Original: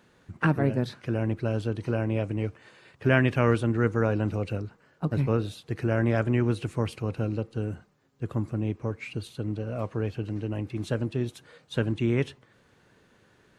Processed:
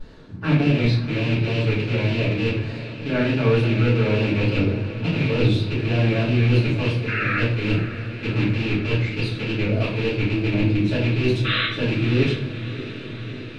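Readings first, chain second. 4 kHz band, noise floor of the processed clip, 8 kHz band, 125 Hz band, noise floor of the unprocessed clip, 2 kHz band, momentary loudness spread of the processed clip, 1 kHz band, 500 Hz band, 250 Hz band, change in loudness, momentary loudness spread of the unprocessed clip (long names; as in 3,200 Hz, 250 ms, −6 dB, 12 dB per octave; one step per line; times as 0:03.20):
+15.5 dB, −34 dBFS, can't be measured, +8.0 dB, −63 dBFS, +9.0 dB, 9 LU, +3.5 dB, +5.0 dB, +6.5 dB, +7.0 dB, 10 LU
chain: loose part that buzzes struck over −28 dBFS, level −16 dBFS
high-pass filter 180 Hz 12 dB per octave
sound drawn into the spectrogram noise, 0:07.07–0:07.38, 1,200–2,700 Hz −18 dBFS
parametric band 4,300 Hz +13.5 dB 0.9 octaves
reversed playback
downward compressor 6 to 1, threshold −31 dBFS, peak gain reduction 17.5 dB
reversed playback
pitch vibrato 3.4 Hz 91 cents
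spectral tilt −3.5 dB per octave
sound drawn into the spectrogram noise, 0:11.44–0:11.66, 1,100–4,100 Hz −33 dBFS
on a send: feedback delay with all-pass diffusion 620 ms, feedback 71%, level −13 dB
on the sum: rectangular room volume 73 cubic metres, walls mixed, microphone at 2.5 metres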